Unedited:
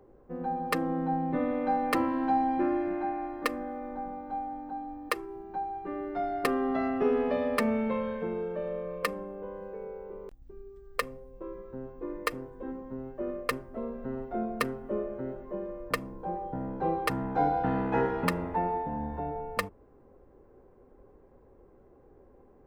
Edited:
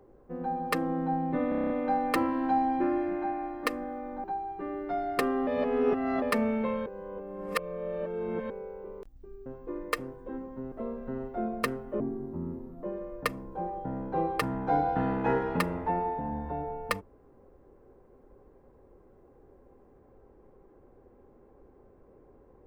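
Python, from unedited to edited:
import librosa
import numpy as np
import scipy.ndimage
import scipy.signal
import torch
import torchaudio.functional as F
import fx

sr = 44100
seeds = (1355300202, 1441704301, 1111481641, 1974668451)

y = fx.edit(x, sr, fx.stutter(start_s=1.49, slice_s=0.03, count=8),
    fx.cut(start_s=4.03, length_s=1.47),
    fx.reverse_span(start_s=6.73, length_s=0.75),
    fx.reverse_span(start_s=8.12, length_s=1.64),
    fx.cut(start_s=10.72, length_s=1.08),
    fx.cut(start_s=13.06, length_s=0.63),
    fx.speed_span(start_s=14.97, length_s=0.54, speed=0.65), tone=tone)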